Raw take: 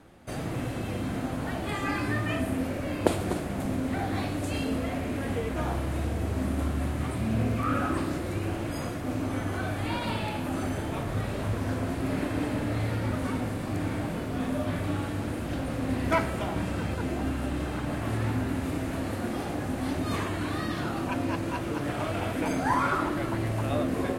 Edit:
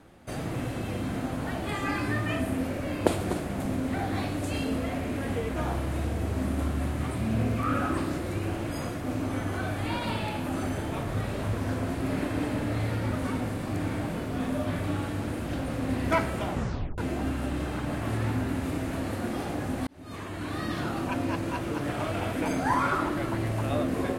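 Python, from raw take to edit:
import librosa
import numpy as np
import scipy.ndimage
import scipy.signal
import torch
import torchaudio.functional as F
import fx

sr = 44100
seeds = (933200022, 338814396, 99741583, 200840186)

y = fx.edit(x, sr, fx.tape_stop(start_s=16.5, length_s=0.48),
    fx.fade_in_span(start_s=19.87, length_s=0.86), tone=tone)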